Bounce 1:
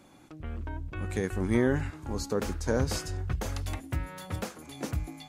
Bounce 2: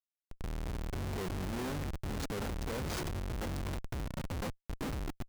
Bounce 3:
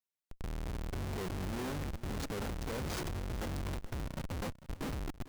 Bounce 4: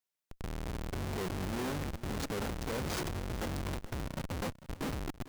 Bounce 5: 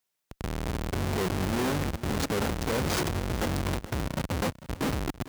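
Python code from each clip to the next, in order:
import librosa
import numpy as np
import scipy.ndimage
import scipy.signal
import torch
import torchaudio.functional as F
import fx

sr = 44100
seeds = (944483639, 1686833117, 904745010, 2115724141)

y1 = fx.schmitt(x, sr, flips_db=-36.0)
y1 = y1 * 10.0 ** (-4.5 / 20.0)
y2 = y1 + 10.0 ** (-16.5 / 20.0) * np.pad(y1, (int(447 * sr / 1000.0), 0))[:len(y1)]
y2 = y2 * 10.0 ** (-1.0 / 20.0)
y3 = fx.low_shelf(y2, sr, hz=80.0, db=-5.5)
y3 = y3 * 10.0 ** (3.0 / 20.0)
y4 = scipy.signal.sosfilt(scipy.signal.butter(2, 44.0, 'highpass', fs=sr, output='sos'), y3)
y4 = y4 * 10.0 ** (8.0 / 20.0)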